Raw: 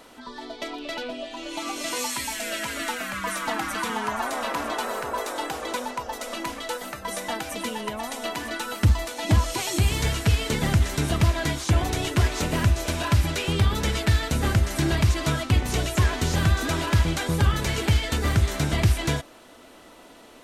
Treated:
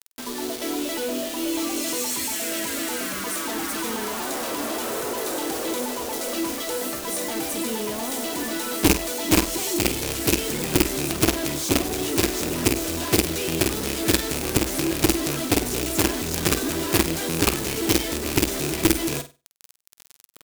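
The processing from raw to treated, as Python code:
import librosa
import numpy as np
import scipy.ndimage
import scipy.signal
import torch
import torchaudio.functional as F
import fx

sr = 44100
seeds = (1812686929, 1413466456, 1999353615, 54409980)

p1 = fx.rattle_buzz(x, sr, strikes_db=-22.0, level_db=-13.0)
p2 = fx.quant_companded(p1, sr, bits=2)
p3 = fx.peak_eq(p2, sr, hz=340.0, db=13.5, octaves=1.5)
p4 = fx.tube_stage(p3, sr, drive_db=3.0, bias=0.3)
p5 = fx.quant_dither(p4, sr, seeds[0], bits=6, dither='none')
p6 = fx.high_shelf(p5, sr, hz=3700.0, db=11.0)
p7 = p6 + fx.room_flutter(p6, sr, wall_m=8.4, rt60_s=0.27, dry=0)
y = p7 * librosa.db_to_amplitude(-8.5)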